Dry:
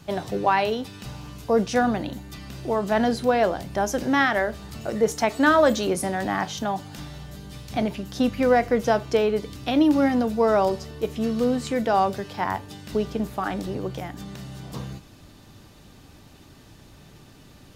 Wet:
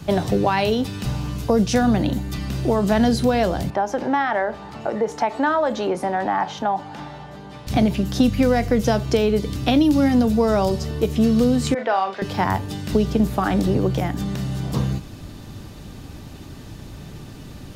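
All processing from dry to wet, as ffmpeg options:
-filter_complex "[0:a]asettb=1/sr,asplit=3[a][b][c];[a]atrim=end=3.704[d];[b]atrim=start=3.7:end=7.67,asetpts=PTS-STARTPTS,afade=t=in:d=0.004:c=qsin,afade=t=out:st=3.966:d=0.004:c=qsin,equalizer=f=860:t=o:w=0.23:g=8,acompressor=threshold=-27dB:ratio=1.5:attack=3.2:release=140:knee=1:detection=peak,bandpass=f=950:t=q:w=0.66[e];[c]atrim=start=7.666[f];[d][e]acrossfade=d=0.004:c1=hsin:c2=qsin[g];[g][f]acrossfade=d=0.004:c1=qsin:c2=hsin,asettb=1/sr,asplit=3[h][i][j];[h]atrim=end=11.744[k];[i]atrim=start=11.74:end=12.22,asetpts=PTS-STARTPTS,afade=t=in:d=0.004:c=qsin,afade=t=out:st=0.476:d=0.004:c=qsin,highpass=700,lowpass=2.3k,asplit=2[l][m];[m]adelay=41,volume=-8dB[n];[l][n]amix=inputs=2:normalize=0,atrim=end_sample=21168,adynamicequalizer=threshold=0.02:dfrequency=1700:dqfactor=0.7:tfrequency=1700:tqfactor=0.7:attack=5:release=100:ratio=0.375:range=2:mode=boostabove:tftype=highshelf[o];[j]atrim=start=12.216[p];[k][o]acrossfade=d=0.004:c1=hsin:c2=qsin[q];[q][p]acrossfade=d=0.004:c1=qsin:c2=hsin,lowshelf=f=370:g=6.5,acrossover=split=170|3000[r][s][t];[s]acompressor=threshold=-24dB:ratio=6[u];[r][u][t]amix=inputs=3:normalize=0,volume=7dB"

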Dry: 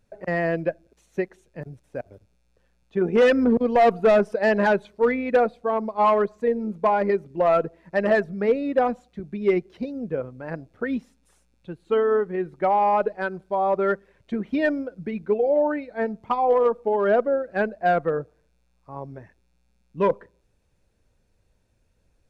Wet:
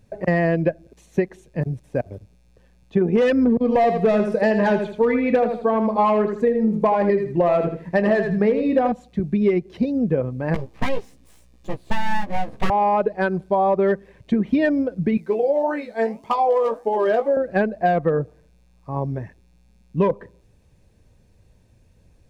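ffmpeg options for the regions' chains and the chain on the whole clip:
-filter_complex "[0:a]asettb=1/sr,asplit=3[a][b][c];[a]atrim=end=3.584[d];[b]atrim=start=3.58:end=8.92,asetpts=PTS-STARTPTS,afade=t=in:d=0.004:c=qsin,afade=t=out:st=5.336:d=0.004:c=qsin,asplit=2[e][f];[f]adelay=23,volume=-12.5dB[g];[e][g]amix=inputs=2:normalize=0,atrim=end_sample=235494,aecho=1:1:80|160|240:0.376|0.0789|0.0166,atrim=end_sample=235494[h];[c]atrim=start=8.916[i];[d][h]acrossfade=d=0.004:c1=hsin:c2=qsin[j];[j][i]acrossfade=d=0.004:c1=qsin:c2=hsin,asettb=1/sr,asplit=3[k][l][m];[k]atrim=end=10.544[n];[l]atrim=start=10.54:end=12.7,asetpts=PTS-STARTPTS,afade=t=in:d=0.004:c=qsin,afade=t=out:st=2.156:d=0.004:c=qsin,equalizer=f=95:t=o:w=0.47:g=-14.5,aeval=exprs='abs(val(0))':c=same,asplit=2[o][p];[p]adelay=15,volume=-2dB[q];[o][q]amix=inputs=2:normalize=0,atrim=end_sample=95256[r];[m]atrim=start=12.696[s];[n][r]acrossfade=d=0.004:c1=hsin:c2=qsin[t];[t][s]acrossfade=d=0.004:c1=qsin:c2=hsin,asettb=1/sr,asplit=3[u][v][w];[u]atrim=end=15.174[x];[v]atrim=start=15.17:end=17.37,asetpts=PTS-STARTPTS,afade=t=in:d=0.004:c=qsin,afade=t=out:st=2.196:d=0.004:c=qsin,bass=f=250:g=-14,treble=f=4k:g=12,flanger=delay=4.1:depth=4.7:regen=-87:speed=1.8:shape=triangular,asplit=2[y][z];[z]adelay=18,volume=-6.5dB[aa];[y][aa]amix=inputs=2:normalize=0,atrim=end_sample=97020[ab];[w]atrim=start=17.366[ac];[x][ab]acrossfade=d=0.004:c1=hsin:c2=qsin[ad];[ad][ac]acrossfade=d=0.004:c1=qsin:c2=hsin,equalizer=f=120:t=o:w=2.5:g=7,bandreject=f=1.4k:w=7,acompressor=threshold=-23dB:ratio=6,volume=7.5dB"

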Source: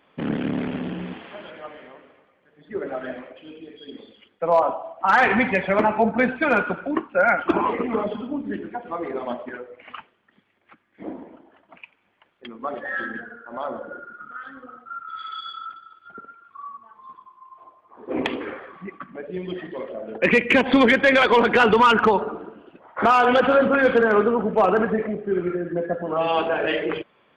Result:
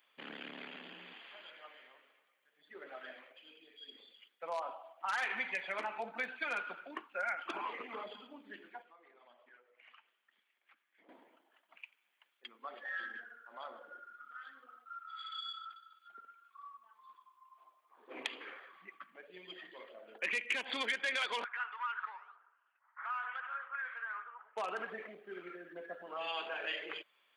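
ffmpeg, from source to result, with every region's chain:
-filter_complex "[0:a]asettb=1/sr,asplit=3[a][b][c];[a]atrim=end=8.824[d];[b]atrim=start=8.82:end=11.09,asetpts=PTS-STARTPTS,afade=t=in:d=0.004:c=qsin,afade=t=out:st=2.266:d=0.004:c=qsin,bass=f=250:g=-4,treble=f=4k:g=-6,acompressor=threshold=-49dB:ratio=2.5:attack=3.2:release=140:knee=1:detection=peak[e];[c]atrim=start=11.086[f];[d][e]acrossfade=d=0.004:c1=hsin:c2=qsin[g];[g][f]acrossfade=d=0.004:c1=qsin:c2=hsin,asettb=1/sr,asplit=3[h][i][j];[h]atrim=end=21.444[k];[i]atrim=start=21.44:end=24.57,asetpts=PTS-STARTPTS,afade=t=in:d=0.004:c=qsin,afade=t=out:st=3.126:d=0.004:c=qsin,asuperpass=centerf=1400:order=4:qfactor=1.5,flanger=delay=3.8:depth=9.4:regen=90:speed=1.1:shape=triangular[l];[j]atrim=start=24.566[m];[k][l]acrossfade=d=0.004:c1=hsin:c2=qsin[n];[n][m]acrossfade=d=0.004:c1=qsin:c2=hsin,highpass=160,aderivative,acompressor=threshold=-37dB:ratio=2,volume=1dB"

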